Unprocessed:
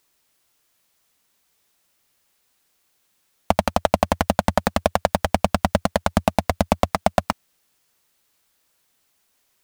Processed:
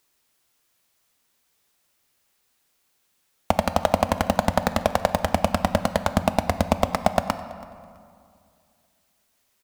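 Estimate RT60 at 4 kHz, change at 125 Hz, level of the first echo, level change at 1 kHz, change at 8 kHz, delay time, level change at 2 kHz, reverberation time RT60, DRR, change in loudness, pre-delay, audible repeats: 1.3 s, −1.5 dB, −23.0 dB, −1.5 dB, −2.0 dB, 329 ms, −1.5 dB, 2.3 s, 10.5 dB, −1.5 dB, 5 ms, 2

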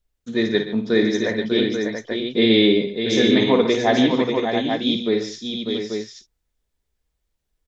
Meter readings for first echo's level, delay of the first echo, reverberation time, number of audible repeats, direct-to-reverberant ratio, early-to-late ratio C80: −8.0 dB, 53 ms, no reverb audible, 5, no reverb audible, no reverb audible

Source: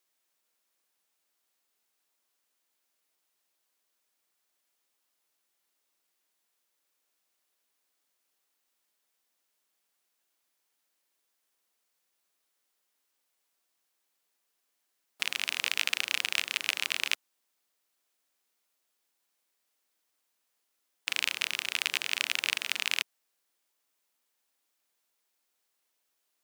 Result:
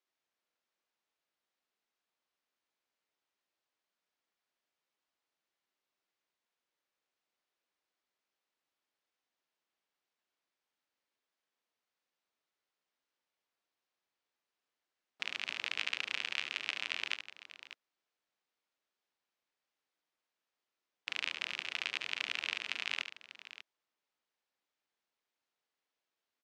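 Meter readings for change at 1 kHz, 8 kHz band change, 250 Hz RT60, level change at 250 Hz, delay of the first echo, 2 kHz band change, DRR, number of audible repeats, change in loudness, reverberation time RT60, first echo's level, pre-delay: −5.0 dB, −15.5 dB, no reverb audible, −4.5 dB, 72 ms, −6.0 dB, no reverb audible, 2, −7.0 dB, no reverb audible, −9.5 dB, no reverb audible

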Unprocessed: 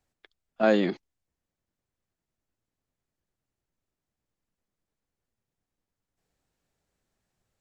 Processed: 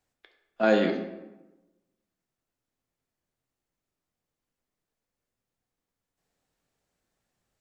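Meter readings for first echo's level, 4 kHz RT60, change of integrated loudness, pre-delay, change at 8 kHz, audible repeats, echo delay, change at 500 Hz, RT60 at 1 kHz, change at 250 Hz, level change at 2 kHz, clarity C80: no echo audible, 0.65 s, 0.0 dB, 12 ms, can't be measured, no echo audible, no echo audible, +0.5 dB, 1.0 s, 0.0 dB, +1.5 dB, 9.5 dB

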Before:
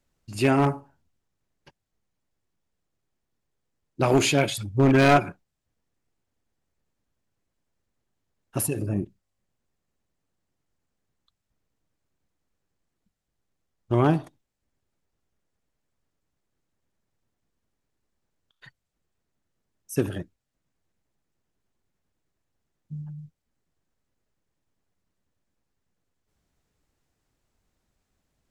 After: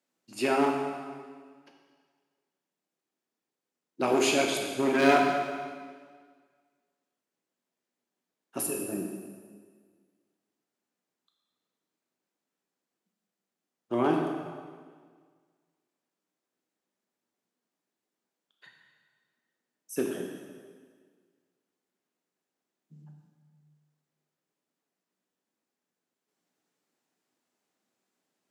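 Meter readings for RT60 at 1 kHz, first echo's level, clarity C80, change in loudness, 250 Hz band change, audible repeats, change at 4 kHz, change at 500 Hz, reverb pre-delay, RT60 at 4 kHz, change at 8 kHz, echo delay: 1.7 s, no echo audible, 4.5 dB, −5.0 dB, −4.5 dB, no echo audible, −2.5 dB, −2.5 dB, 6 ms, 1.6 s, −2.5 dB, no echo audible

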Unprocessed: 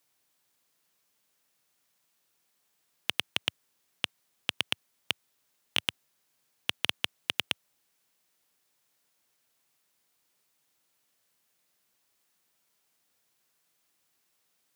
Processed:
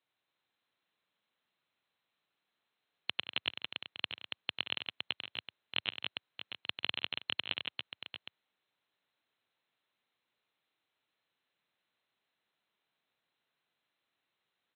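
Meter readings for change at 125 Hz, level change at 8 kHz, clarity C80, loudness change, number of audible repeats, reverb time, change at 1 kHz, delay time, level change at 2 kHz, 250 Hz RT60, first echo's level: −7.0 dB, below −30 dB, no reverb audible, −5.5 dB, 6, no reverb audible, −4.5 dB, 95 ms, −4.0 dB, no reverb audible, −9.0 dB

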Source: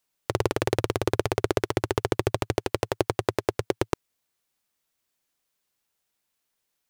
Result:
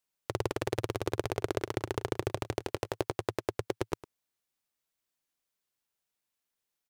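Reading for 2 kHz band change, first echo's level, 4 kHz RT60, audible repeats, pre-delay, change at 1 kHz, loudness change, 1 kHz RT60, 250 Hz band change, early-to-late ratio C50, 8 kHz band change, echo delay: −7.5 dB, −17.0 dB, no reverb audible, 1, no reverb audible, −7.5 dB, −7.5 dB, no reverb audible, −7.5 dB, no reverb audible, −7.5 dB, 105 ms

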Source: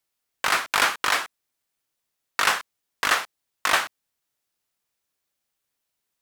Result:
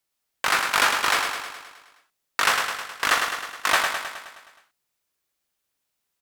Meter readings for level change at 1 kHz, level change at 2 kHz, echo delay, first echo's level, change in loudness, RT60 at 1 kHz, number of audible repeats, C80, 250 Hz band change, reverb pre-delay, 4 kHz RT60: +1.5 dB, +1.5 dB, 105 ms, −5.5 dB, +0.5 dB, no reverb audible, 7, no reverb audible, +1.5 dB, no reverb audible, no reverb audible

